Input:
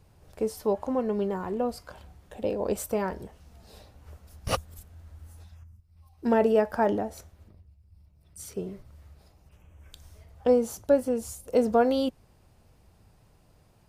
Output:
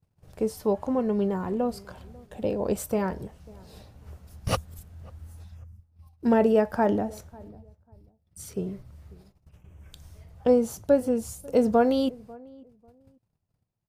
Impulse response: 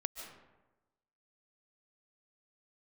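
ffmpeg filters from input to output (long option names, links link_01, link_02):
-filter_complex "[0:a]agate=range=-28dB:threshold=-55dB:ratio=16:detection=peak,equalizer=frequency=140:width=0.94:gain=7,asplit=2[link_01][link_02];[link_02]adelay=544,lowpass=frequency=920:poles=1,volume=-22.5dB,asplit=2[link_03][link_04];[link_04]adelay=544,lowpass=frequency=920:poles=1,volume=0.24[link_05];[link_03][link_05]amix=inputs=2:normalize=0[link_06];[link_01][link_06]amix=inputs=2:normalize=0"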